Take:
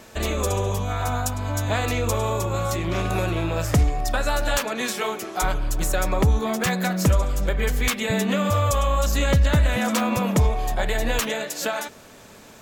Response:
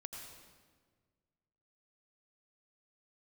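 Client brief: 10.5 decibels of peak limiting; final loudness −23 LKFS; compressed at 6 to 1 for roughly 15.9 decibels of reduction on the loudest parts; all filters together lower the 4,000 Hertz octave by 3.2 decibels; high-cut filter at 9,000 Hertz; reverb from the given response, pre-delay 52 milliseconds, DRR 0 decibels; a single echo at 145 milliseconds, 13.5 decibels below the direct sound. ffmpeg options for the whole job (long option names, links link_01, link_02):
-filter_complex "[0:a]lowpass=9000,equalizer=frequency=4000:width_type=o:gain=-4,acompressor=threshold=-32dB:ratio=6,alimiter=level_in=7dB:limit=-24dB:level=0:latency=1,volume=-7dB,aecho=1:1:145:0.211,asplit=2[link_01][link_02];[1:a]atrim=start_sample=2205,adelay=52[link_03];[link_02][link_03]afir=irnorm=-1:irlink=0,volume=3dB[link_04];[link_01][link_04]amix=inputs=2:normalize=0,volume=13dB"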